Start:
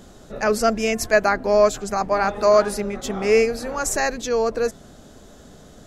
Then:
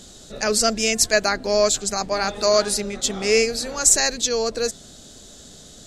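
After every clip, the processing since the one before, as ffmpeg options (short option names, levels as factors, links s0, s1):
-af "equalizer=f=1000:t=o:w=1:g=-4,equalizer=f=4000:t=o:w=1:g=11,equalizer=f=8000:t=o:w=1:g=12,volume=0.794"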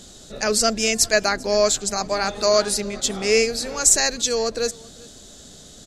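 -af "aecho=1:1:393:0.0631"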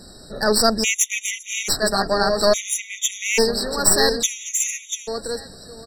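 -af "aecho=1:1:689|1378|2067:0.447|0.0759|0.0129,aeval=exprs='(tanh(3.98*val(0)+0.65)-tanh(0.65))/3.98':c=same,afftfilt=real='re*gt(sin(2*PI*0.59*pts/sr)*(1-2*mod(floor(b*sr/1024/1900),2)),0)':imag='im*gt(sin(2*PI*0.59*pts/sr)*(1-2*mod(floor(b*sr/1024/1900),2)),0)':win_size=1024:overlap=0.75,volume=2.11"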